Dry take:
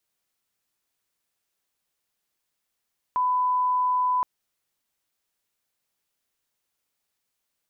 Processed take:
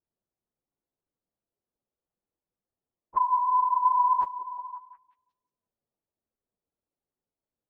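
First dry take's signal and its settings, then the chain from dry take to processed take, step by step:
line-up tone -20 dBFS 1.07 s
phase scrambler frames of 50 ms; low-pass opened by the level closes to 580 Hz, open at -20.5 dBFS; delay with a stepping band-pass 0.18 s, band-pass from 400 Hz, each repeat 0.7 oct, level -9.5 dB

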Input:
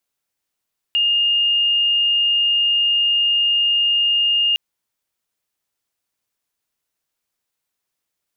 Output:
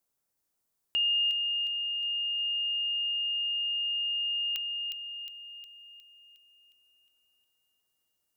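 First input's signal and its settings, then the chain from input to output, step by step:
tone sine 2830 Hz -14 dBFS 3.61 s
bell 2800 Hz -9.5 dB 2 oct; on a send: thin delay 0.36 s, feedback 53%, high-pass 2700 Hz, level -5.5 dB

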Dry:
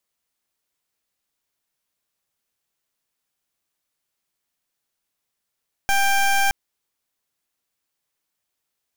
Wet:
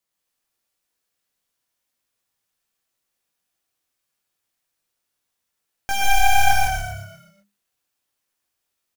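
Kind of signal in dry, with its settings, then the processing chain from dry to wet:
pulse 791 Hz, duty 19% -18 dBFS 0.62 s
chorus 0.75 Hz, delay 15.5 ms, depth 5.1 ms; on a send: frequency-shifting echo 0.122 s, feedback 49%, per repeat -34 Hz, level -6 dB; on the sum: non-linear reverb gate 0.19 s rising, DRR -0.5 dB

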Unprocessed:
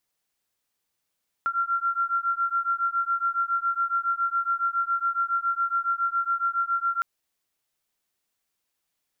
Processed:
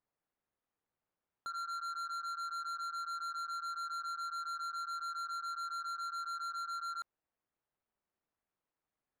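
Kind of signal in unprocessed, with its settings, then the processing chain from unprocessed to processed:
beating tones 1370 Hz, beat 7.2 Hz, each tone -26 dBFS 5.56 s
LPF 1400 Hz; AM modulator 160 Hz, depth 50%; soft clip -38 dBFS

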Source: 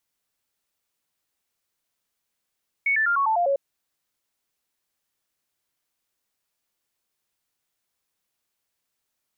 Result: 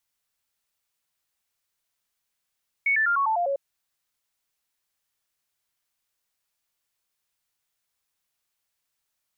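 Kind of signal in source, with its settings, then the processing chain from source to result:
stepped sine 2220 Hz down, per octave 3, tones 7, 0.10 s, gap 0.00 s -18.5 dBFS
bell 310 Hz -6.5 dB 2.1 oct

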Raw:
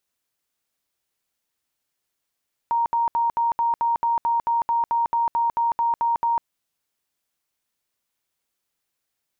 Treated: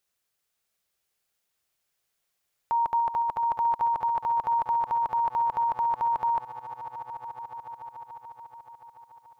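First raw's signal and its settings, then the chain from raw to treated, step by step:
tone bursts 933 Hz, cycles 139, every 0.22 s, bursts 17, -18 dBFS
bell 270 Hz -11.5 dB 0.3 oct; notch 970 Hz, Q 14; swelling echo 0.144 s, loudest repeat 5, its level -13.5 dB

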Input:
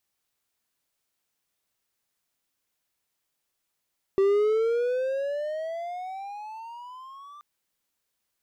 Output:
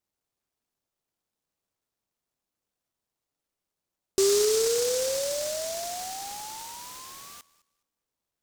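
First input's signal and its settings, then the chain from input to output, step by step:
gliding synth tone triangle, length 3.23 s, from 386 Hz, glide +19.5 st, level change -26 dB, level -15.5 dB
LPF 3500 Hz 24 dB/oct; darkening echo 0.208 s, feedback 22%, low-pass 2100 Hz, level -19.5 dB; noise-modulated delay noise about 5900 Hz, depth 0.17 ms

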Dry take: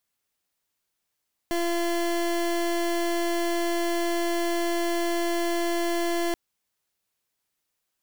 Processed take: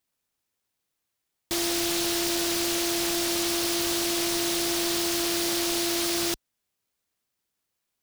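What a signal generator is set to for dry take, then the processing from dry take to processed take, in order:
pulse 342 Hz, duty 27% -25.5 dBFS 4.83 s
HPF 40 Hz; noise-modulated delay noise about 4300 Hz, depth 0.34 ms

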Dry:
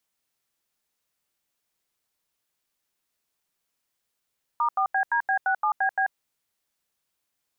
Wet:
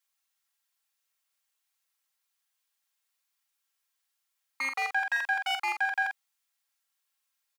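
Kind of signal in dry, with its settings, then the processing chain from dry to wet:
DTMF "*4BDB67BB", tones 88 ms, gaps 84 ms, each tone -23 dBFS
minimum comb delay 3.7 ms; HPF 940 Hz 12 dB/oct; doubler 45 ms -6.5 dB

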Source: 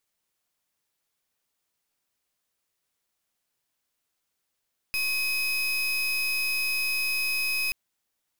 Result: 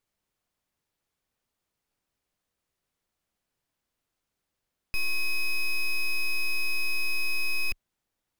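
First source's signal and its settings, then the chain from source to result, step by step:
pulse 2530 Hz, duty 33% -27 dBFS 2.78 s
tilt -2 dB/oct

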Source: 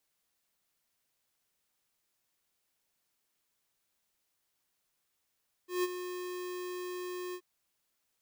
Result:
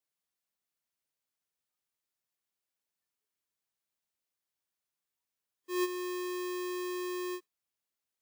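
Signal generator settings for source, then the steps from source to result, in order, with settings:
ADSR square 360 Hz, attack 0.156 s, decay 32 ms, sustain -10.5 dB, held 1.66 s, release 67 ms -29 dBFS
HPF 49 Hz; in parallel at -1 dB: compressor, threshold -45 dBFS; on the sum: spectral noise reduction 16 dB

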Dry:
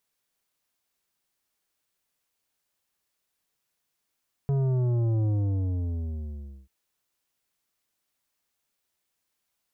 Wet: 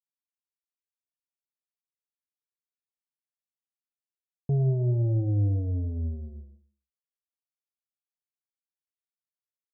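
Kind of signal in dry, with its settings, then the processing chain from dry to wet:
sub drop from 140 Hz, over 2.19 s, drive 10 dB, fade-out 1.42 s, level -23 dB
steep low-pass 720 Hz 48 dB/oct; expander -35 dBFS; non-linear reverb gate 0.29 s falling, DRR 10 dB

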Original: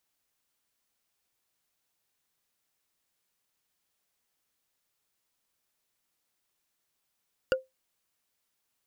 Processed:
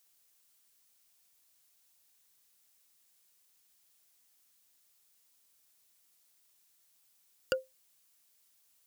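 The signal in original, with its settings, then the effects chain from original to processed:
wood hit, lowest mode 522 Hz, decay 0.18 s, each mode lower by 4 dB, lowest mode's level -18 dB
HPF 62 Hz; high shelf 3400 Hz +12 dB; limiter -15.5 dBFS

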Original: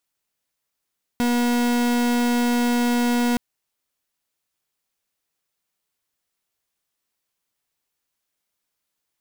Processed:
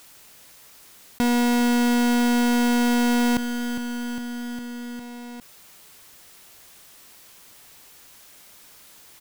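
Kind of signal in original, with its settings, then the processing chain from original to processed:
pulse 241 Hz, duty 41% -20 dBFS 2.17 s
feedback echo 0.406 s, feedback 57%, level -16 dB; fast leveller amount 50%

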